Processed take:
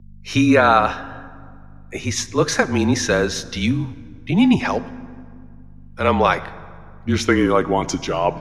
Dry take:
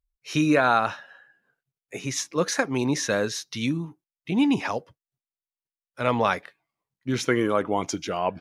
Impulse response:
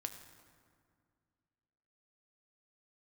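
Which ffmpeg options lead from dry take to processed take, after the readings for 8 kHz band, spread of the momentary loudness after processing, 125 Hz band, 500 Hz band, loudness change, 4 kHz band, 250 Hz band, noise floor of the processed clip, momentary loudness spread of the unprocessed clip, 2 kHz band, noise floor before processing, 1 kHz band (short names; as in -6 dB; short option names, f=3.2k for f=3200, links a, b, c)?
+4.5 dB, 17 LU, +8.5 dB, +6.5 dB, +6.5 dB, +6.0 dB, +6.5 dB, -41 dBFS, 12 LU, +6.0 dB, under -85 dBFS, +6.5 dB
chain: -filter_complex "[0:a]aeval=exprs='val(0)+0.00562*(sin(2*PI*50*n/s)+sin(2*PI*2*50*n/s)/2+sin(2*PI*3*50*n/s)/3+sin(2*PI*4*50*n/s)/4+sin(2*PI*5*50*n/s)/5)':c=same,afreqshift=-32,asplit=2[a][b];[1:a]atrim=start_sample=2205,lowpass=7.8k[c];[b][c]afir=irnorm=-1:irlink=0,volume=-1.5dB[d];[a][d]amix=inputs=2:normalize=0,volume=2.5dB"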